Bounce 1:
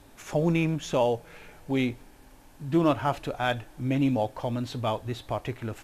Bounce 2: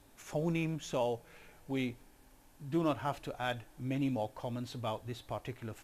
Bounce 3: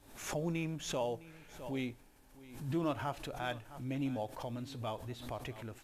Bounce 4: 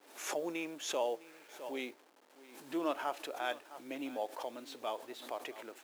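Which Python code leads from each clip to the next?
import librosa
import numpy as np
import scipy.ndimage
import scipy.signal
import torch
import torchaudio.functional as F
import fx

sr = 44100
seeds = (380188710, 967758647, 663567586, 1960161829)

y1 = fx.high_shelf(x, sr, hz=6000.0, db=5.0)
y1 = y1 * 10.0 ** (-9.0 / 20.0)
y2 = y1 + 10.0 ** (-18.5 / 20.0) * np.pad(y1, (int(659 * sr / 1000.0), 0))[:len(y1)]
y2 = fx.pre_swell(y2, sr, db_per_s=83.0)
y2 = y2 * 10.0 ** (-3.0 / 20.0)
y3 = fx.delta_hold(y2, sr, step_db=-58.0)
y3 = scipy.signal.sosfilt(scipy.signal.butter(4, 330.0, 'highpass', fs=sr, output='sos'), y3)
y3 = y3 * 10.0 ** (2.0 / 20.0)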